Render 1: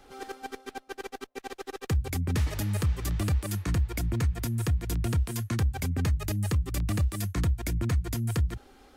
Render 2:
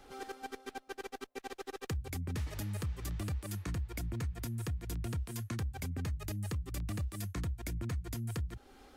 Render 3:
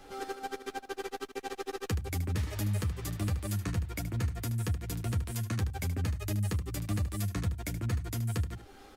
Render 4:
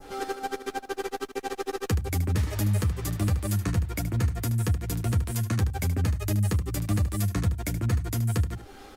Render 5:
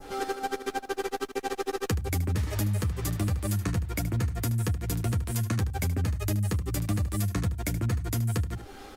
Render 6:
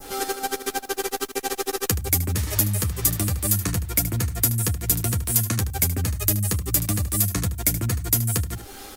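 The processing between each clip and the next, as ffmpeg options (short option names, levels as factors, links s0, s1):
-af "acompressor=threshold=0.0112:ratio=2,volume=0.794"
-af "aecho=1:1:10|76:0.562|0.299,volume=1.5"
-af "adynamicequalizer=threshold=0.00158:dfrequency=3100:dqfactor=0.78:tfrequency=3100:tqfactor=0.78:attack=5:release=100:ratio=0.375:range=1.5:mode=cutabove:tftype=bell,volume=2.11"
-af "acompressor=threshold=0.0501:ratio=4,volume=1.19"
-af "aemphasis=mode=production:type=75kf,volume=1.33"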